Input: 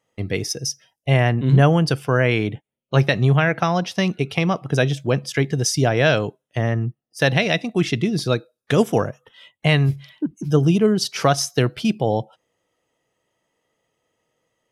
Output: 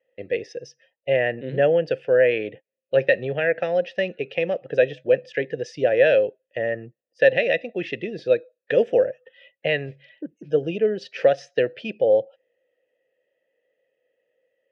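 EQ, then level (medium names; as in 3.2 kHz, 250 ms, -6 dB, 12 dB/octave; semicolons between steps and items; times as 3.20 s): vowel filter e; distance through air 110 m; +9.0 dB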